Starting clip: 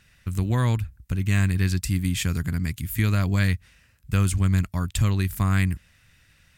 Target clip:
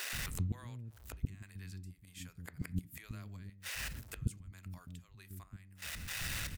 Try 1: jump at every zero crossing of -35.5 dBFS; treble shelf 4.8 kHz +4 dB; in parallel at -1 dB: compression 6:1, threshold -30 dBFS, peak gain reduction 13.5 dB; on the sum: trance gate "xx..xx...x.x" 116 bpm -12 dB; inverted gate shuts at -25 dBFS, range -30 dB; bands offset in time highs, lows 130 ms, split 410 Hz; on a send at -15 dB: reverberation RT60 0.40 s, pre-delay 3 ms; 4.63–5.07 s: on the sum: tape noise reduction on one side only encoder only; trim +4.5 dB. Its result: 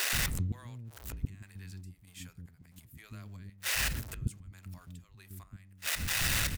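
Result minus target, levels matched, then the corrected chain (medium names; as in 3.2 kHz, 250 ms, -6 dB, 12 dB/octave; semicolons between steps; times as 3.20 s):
jump at every zero crossing: distortion +11 dB; compression: peak gain reduction -6 dB
jump at every zero crossing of -47 dBFS; treble shelf 4.8 kHz +4 dB; in parallel at -1 dB: compression 6:1, threshold -37.5 dBFS, peak gain reduction 19.5 dB; on the sum: trance gate "xx..xx...x.x" 116 bpm -12 dB; inverted gate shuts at -25 dBFS, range -30 dB; bands offset in time highs, lows 130 ms, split 410 Hz; on a send at -15 dB: reverberation RT60 0.40 s, pre-delay 3 ms; 4.63–5.07 s: on the sum: tape noise reduction on one side only encoder only; trim +4.5 dB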